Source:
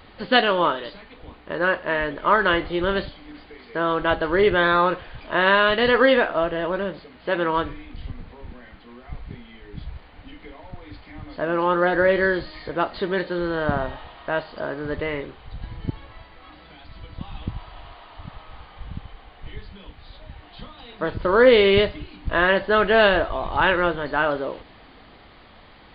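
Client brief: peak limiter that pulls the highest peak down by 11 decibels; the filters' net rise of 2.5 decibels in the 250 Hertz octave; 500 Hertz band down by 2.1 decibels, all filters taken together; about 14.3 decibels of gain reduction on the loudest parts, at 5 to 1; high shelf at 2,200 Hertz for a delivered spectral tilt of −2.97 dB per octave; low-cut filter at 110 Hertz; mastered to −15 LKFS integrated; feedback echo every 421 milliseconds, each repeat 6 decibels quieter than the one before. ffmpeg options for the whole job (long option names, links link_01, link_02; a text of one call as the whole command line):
ffmpeg -i in.wav -af "highpass=110,equalizer=frequency=250:width_type=o:gain=5.5,equalizer=frequency=500:width_type=o:gain=-4.5,highshelf=frequency=2200:gain=6.5,acompressor=threshold=-27dB:ratio=5,alimiter=level_in=0.5dB:limit=-24dB:level=0:latency=1,volume=-0.5dB,aecho=1:1:421|842|1263|1684|2105|2526:0.501|0.251|0.125|0.0626|0.0313|0.0157,volume=20.5dB" out.wav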